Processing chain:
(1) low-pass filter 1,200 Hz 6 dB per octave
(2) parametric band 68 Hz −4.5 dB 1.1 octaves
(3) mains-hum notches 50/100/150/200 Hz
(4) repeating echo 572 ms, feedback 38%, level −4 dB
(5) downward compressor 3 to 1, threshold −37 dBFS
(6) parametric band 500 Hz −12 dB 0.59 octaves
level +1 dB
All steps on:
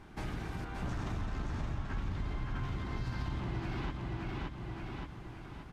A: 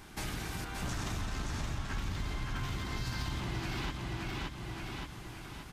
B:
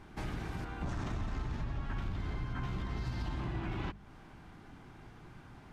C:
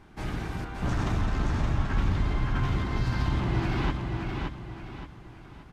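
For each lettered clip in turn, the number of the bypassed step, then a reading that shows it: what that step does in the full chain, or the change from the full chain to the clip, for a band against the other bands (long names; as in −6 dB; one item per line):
1, 4 kHz band +9.0 dB
4, change in momentary loudness spread +10 LU
5, average gain reduction 6.5 dB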